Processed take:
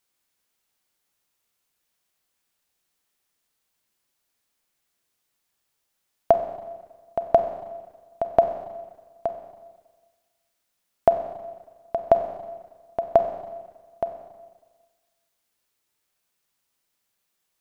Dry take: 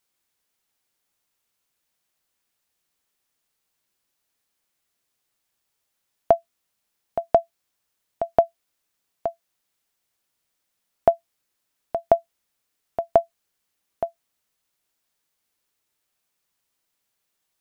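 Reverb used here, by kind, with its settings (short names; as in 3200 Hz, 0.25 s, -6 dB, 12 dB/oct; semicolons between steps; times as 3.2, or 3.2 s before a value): Schroeder reverb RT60 1.4 s, combs from 31 ms, DRR 7 dB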